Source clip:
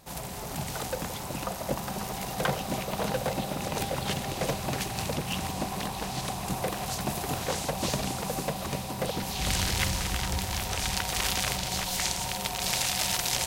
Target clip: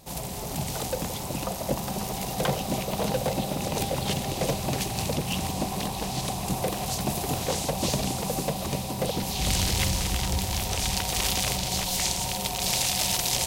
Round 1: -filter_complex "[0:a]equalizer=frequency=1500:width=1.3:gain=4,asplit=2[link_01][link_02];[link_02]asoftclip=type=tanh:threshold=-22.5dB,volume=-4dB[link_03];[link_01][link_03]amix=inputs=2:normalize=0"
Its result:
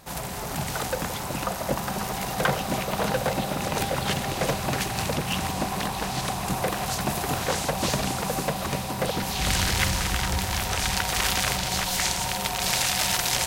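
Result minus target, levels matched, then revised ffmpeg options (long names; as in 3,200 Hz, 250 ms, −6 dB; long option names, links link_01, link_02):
2,000 Hz band +5.5 dB
-filter_complex "[0:a]equalizer=frequency=1500:width=1.3:gain=-8,asplit=2[link_01][link_02];[link_02]asoftclip=type=tanh:threshold=-22.5dB,volume=-4dB[link_03];[link_01][link_03]amix=inputs=2:normalize=0"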